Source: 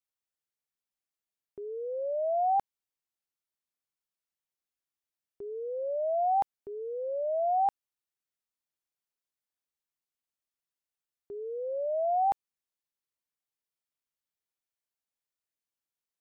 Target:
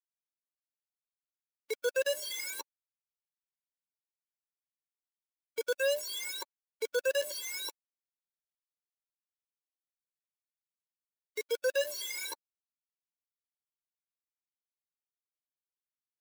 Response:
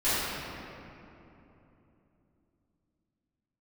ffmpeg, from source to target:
-af "flanger=delay=3.7:depth=8.9:regen=41:speed=0.61:shape=triangular,acrusher=bits=5:mix=0:aa=0.000001,aeval=exprs='(tanh(25.1*val(0)+0.1)-tanh(0.1))/25.1':c=same,afftfilt=real='re*eq(mod(floor(b*sr/1024/290),2),1)':imag='im*eq(mod(floor(b*sr/1024/290),2),1)':win_size=1024:overlap=0.75,volume=2.51"

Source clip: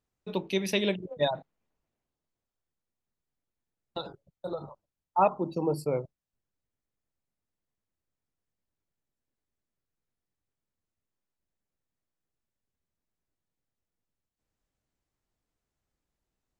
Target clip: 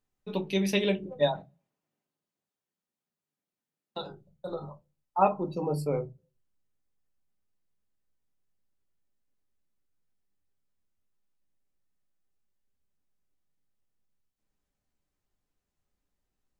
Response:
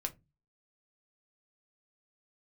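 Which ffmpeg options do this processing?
-filter_complex "[0:a]asettb=1/sr,asplit=3[s0][s1][s2];[s0]atrim=end=1.384[s3];[s1]atrim=start=1.38:end=4.01,asetpts=PTS-STARTPTS,afade=t=in:d=0.004:c=qsin,afade=t=out:st=2.626:d=0.004:c=qsin,highpass=f=130:w=0.5412,highpass=f=130:w=1.3066[s4];[s2]atrim=start=4.006[s5];[s3][s4]acrossfade=d=0.004:c1=hsin:c2=qsin[s6];[s6][s5]acrossfade=d=0.004:c1=qsin:c2=hsin[s7];[1:a]atrim=start_sample=2205,asetrate=52920,aresample=44100[s8];[s7][s8]afir=irnorm=-1:irlink=0,volume=1.12"

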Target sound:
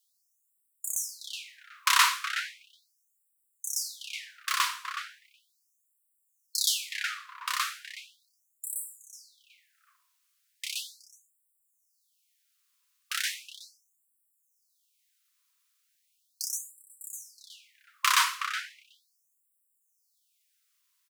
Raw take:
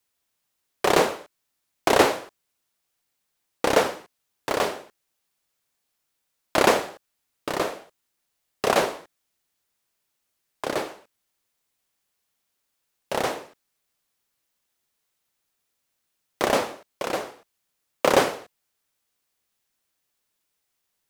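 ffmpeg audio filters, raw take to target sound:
-filter_complex "[0:a]equalizer=f=1600:t=o:w=1.2:g=-4,asplit=2[s0][s1];[s1]adelay=370,lowpass=f=1500:p=1,volume=0.668,asplit=2[s2][s3];[s3]adelay=370,lowpass=f=1500:p=1,volume=0.2,asplit=2[s4][s5];[s5]adelay=370,lowpass=f=1500:p=1,volume=0.2[s6];[s0][s2][s4][s6]amix=inputs=4:normalize=0,afftfilt=real='re*gte(b*sr/1024,940*pow(7600/940,0.5+0.5*sin(2*PI*0.37*pts/sr)))':imag='im*gte(b*sr/1024,940*pow(7600/940,0.5+0.5*sin(2*PI*0.37*pts/sr)))':win_size=1024:overlap=0.75,volume=1.58"

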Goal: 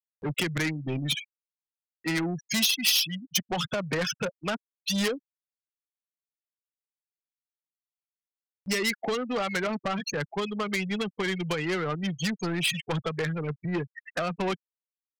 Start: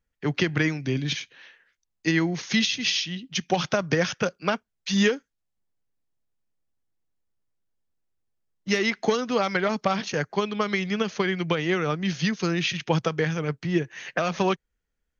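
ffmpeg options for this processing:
-af "afftfilt=real='re*gte(hypot(re,im),0.0631)':imag='im*gte(hypot(re,im),0.0631)':win_size=1024:overlap=0.75,asoftclip=type=tanh:threshold=0.0668,aemphasis=mode=production:type=75fm,agate=range=0.501:threshold=0.00631:ratio=16:detection=peak,acompressor=mode=upward:threshold=0.01:ratio=2.5"

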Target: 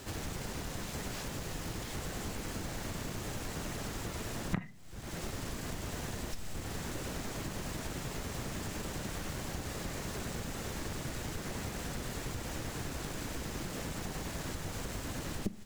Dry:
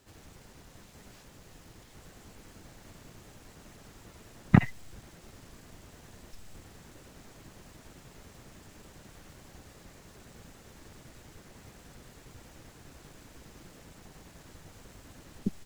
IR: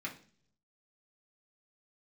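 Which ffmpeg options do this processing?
-filter_complex "[0:a]acompressor=threshold=0.00316:ratio=8,asplit=2[s0][s1];[1:a]atrim=start_sample=2205,asetrate=36162,aresample=44100,adelay=39[s2];[s1][s2]afir=irnorm=-1:irlink=0,volume=0.126[s3];[s0][s3]amix=inputs=2:normalize=0,volume=5.96"

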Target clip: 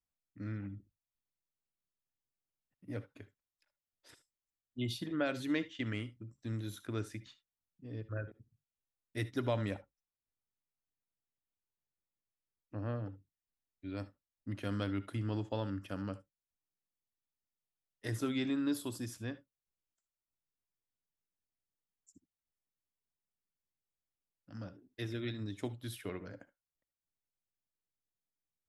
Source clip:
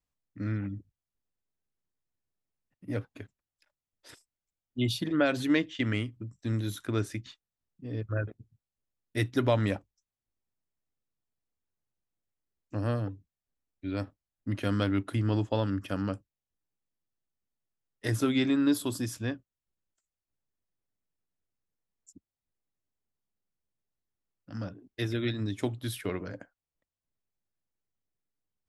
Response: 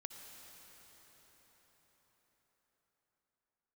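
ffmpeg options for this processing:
-filter_complex "[0:a]asettb=1/sr,asplit=3[s0][s1][s2];[s0]atrim=end=9.744[s3];[s1]atrim=start=9.74:end=13.06,asetpts=PTS-STARTPTS,afade=t=in:d=0.004:c=qsin,afade=t=out:st=3.316:d=0.004:c=qsin,lowpass=2600[s4];[s2]atrim=start=13.056[s5];[s3][s4]acrossfade=d=0.004:c1=hsin:c2=qsin[s6];[s6][s5]acrossfade=d=0.004:c1=qsin:c2=hsin[s7];[1:a]atrim=start_sample=2205,atrim=end_sample=3528[s8];[s7][s8]afir=irnorm=-1:irlink=0,volume=0.708"

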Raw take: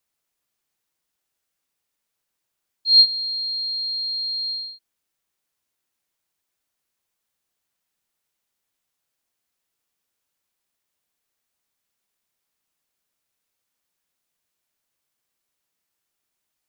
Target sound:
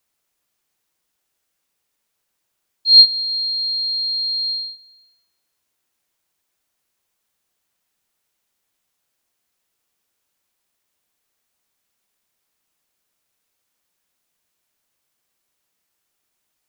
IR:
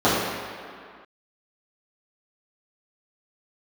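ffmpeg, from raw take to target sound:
-filter_complex "[0:a]asplit=2[s0][s1];[1:a]atrim=start_sample=2205[s2];[s1][s2]afir=irnorm=-1:irlink=0,volume=0.0106[s3];[s0][s3]amix=inputs=2:normalize=0,volume=1.78"

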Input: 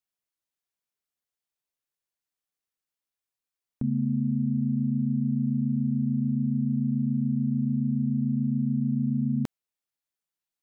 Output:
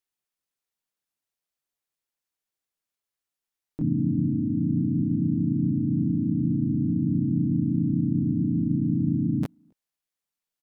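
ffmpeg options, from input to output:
-filter_complex "[0:a]asplit=2[s0][s1];[s1]adelay=270,highpass=300,lowpass=3400,asoftclip=type=hard:threshold=0.0447,volume=0.0398[s2];[s0][s2]amix=inputs=2:normalize=0,asplit=4[s3][s4][s5][s6];[s4]asetrate=29433,aresample=44100,atempo=1.49831,volume=0.447[s7];[s5]asetrate=35002,aresample=44100,atempo=1.25992,volume=0.562[s8];[s6]asetrate=55563,aresample=44100,atempo=0.793701,volume=1[s9];[s3][s7][s8][s9]amix=inputs=4:normalize=0,volume=0.75"

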